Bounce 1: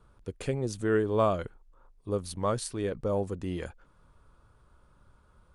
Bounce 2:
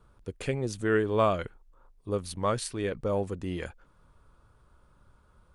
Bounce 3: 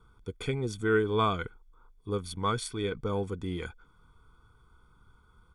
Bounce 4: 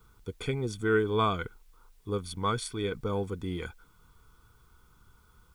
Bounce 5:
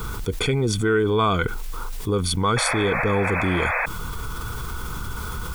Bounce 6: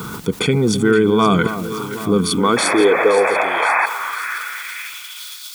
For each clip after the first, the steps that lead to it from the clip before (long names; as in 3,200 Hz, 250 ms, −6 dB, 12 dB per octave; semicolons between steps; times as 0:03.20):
dynamic equaliser 2,300 Hz, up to +7 dB, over −49 dBFS, Q 1
comb filter 0.9 ms, depth 96%; hollow resonant body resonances 480/1,500/3,400 Hz, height 12 dB, ringing for 25 ms; level −5.5 dB
background noise white −72 dBFS
sound drawn into the spectrogram noise, 0:02.56–0:03.86, 470–2,600 Hz −39 dBFS; envelope flattener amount 70%; level +4 dB
delay that swaps between a low-pass and a high-pass 260 ms, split 1,200 Hz, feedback 80%, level −10 dB; high-pass filter sweep 180 Hz → 3,900 Hz, 0:02.11–0:05.39; level +4 dB